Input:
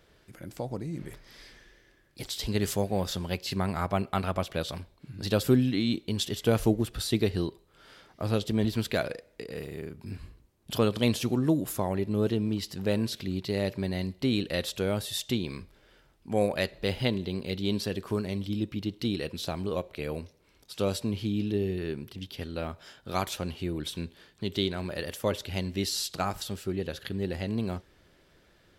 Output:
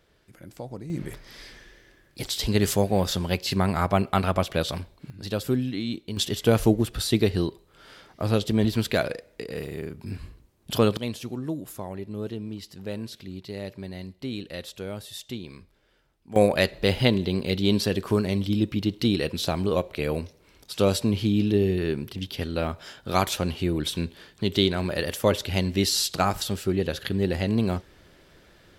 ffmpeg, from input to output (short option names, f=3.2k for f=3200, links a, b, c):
-af "asetnsamples=n=441:p=0,asendcmd='0.9 volume volume 6dB;5.1 volume volume -2.5dB;6.17 volume volume 4.5dB;10.97 volume volume -6dB;16.36 volume volume 7dB',volume=-2.5dB"